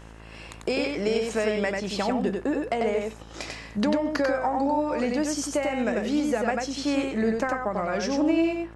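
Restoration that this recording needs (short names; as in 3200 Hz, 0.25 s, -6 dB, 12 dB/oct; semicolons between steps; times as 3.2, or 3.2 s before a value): de-hum 55 Hz, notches 33; inverse comb 94 ms -3.5 dB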